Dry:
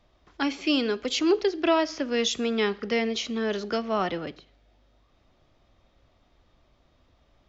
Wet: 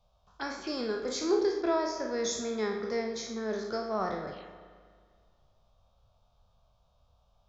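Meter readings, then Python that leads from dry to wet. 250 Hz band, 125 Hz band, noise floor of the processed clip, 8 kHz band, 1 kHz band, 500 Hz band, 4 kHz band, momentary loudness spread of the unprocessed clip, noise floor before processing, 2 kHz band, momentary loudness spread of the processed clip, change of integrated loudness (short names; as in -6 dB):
-7.5 dB, -5.5 dB, -69 dBFS, n/a, -4.5 dB, -4.0 dB, -10.5 dB, 6 LU, -65 dBFS, -8.5 dB, 11 LU, -6.0 dB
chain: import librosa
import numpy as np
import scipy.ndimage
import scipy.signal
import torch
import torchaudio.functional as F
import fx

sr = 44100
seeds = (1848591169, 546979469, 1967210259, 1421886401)

y = fx.spec_trails(x, sr, decay_s=0.59)
y = fx.peak_eq(y, sr, hz=280.0, db=-11.5, octaves=0.29)
y = fx.env_phaser(y, sr, low_hz=310.0, high_hz=2900.0, full_db=-28.0)
y = fx.rev_spring(y, sr, rt60_s=1.9, pass_ms=(32, 41), chirp_ms=30, drr_db=7.5)
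y = y * 10.0 ** (-5.5 / 20.0)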